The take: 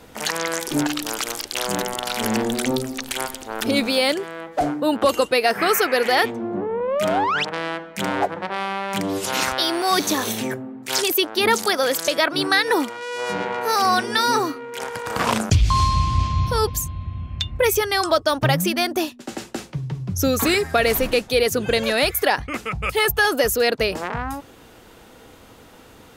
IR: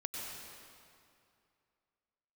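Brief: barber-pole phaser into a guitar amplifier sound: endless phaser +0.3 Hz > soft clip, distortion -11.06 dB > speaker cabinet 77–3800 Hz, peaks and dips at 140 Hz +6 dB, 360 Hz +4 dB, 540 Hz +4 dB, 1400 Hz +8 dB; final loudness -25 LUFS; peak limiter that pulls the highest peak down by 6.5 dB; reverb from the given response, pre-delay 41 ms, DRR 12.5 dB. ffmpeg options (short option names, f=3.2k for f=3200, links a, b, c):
-filter_complex "[0:a]alimiter=limit=-12.5dB:level=0:latency=1,asplit=2[a][b];[1:a]atrim=start_sample=2205,adelay=41[c];[b][c]afir=irnorm=-1:irlink=0,volume=-13.5dB[d];[a][d]amix=inputs=2:normalize=0,asplit=2[e][f];[f]afreqshift=0.3[g];[e][g]amix=inputs=2:normalize=1,asoftclip=threshold=-24.5dB,highpass=77,equalizer=f=140:t=q:w=4:g=6,equalizer=f=360:t=q:w=4:g=4,equalizer=f=540:t=q:w=4:g=4,equalizer=f=1.4k:t=q:w=4:g=8,lowpass=f=3.8k:w=0.5412,lowpass=f=3.8k:w=1.3066,volume=3.5dB"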